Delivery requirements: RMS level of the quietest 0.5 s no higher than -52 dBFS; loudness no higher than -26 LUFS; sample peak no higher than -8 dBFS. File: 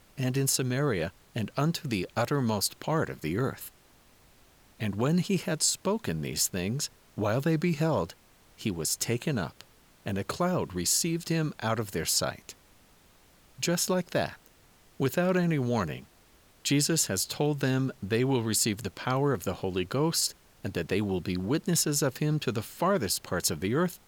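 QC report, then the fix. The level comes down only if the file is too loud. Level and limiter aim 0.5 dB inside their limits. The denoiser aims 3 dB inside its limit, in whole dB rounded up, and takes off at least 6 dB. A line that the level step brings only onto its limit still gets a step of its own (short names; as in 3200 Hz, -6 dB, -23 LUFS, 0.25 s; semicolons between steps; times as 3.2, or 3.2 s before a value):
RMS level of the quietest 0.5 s -60 dBFS: OK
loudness -29.0 LUFS: OK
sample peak -13.5 dBFS: OK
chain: none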